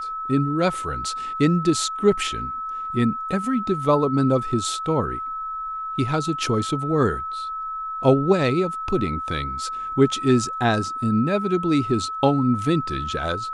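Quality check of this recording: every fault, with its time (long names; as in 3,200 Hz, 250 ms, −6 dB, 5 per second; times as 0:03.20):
whistle 1,300 Hz −27 dBFS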